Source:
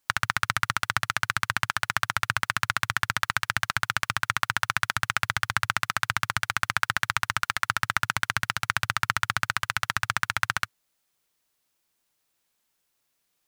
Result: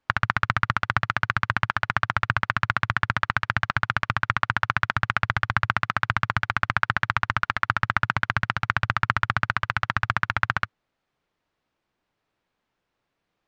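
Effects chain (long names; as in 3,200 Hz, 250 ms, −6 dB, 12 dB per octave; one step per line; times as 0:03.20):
head-to-tape spacing loss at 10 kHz 34 dB
level +8 dB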